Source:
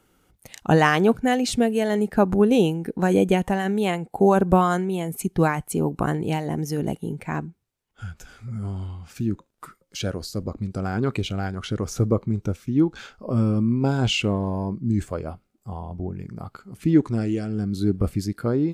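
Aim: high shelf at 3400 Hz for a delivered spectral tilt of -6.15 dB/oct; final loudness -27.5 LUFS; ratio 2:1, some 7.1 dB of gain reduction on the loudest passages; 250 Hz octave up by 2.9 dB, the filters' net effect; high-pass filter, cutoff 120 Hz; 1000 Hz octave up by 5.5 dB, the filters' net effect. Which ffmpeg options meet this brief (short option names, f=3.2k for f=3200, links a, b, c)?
-af "highpass=120,equalizer=f=250:t=o:g=4,equalizer=f=1k:t=o:g=7.5,highshelf=f=3.4k:g=-4.5,acompressor=threshold=-22dB:ratio=2,volume=-2dB"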